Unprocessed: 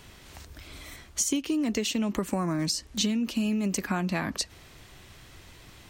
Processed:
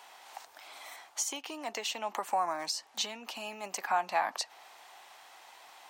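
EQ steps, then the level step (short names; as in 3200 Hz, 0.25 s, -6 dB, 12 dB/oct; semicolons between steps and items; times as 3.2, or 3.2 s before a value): dynamic EQ 9500 Hz, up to -4 dB, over -46 dBFS, Q 0.77; resonant high-pass 800 Hz, resonance Q 4.9; -3.5 dB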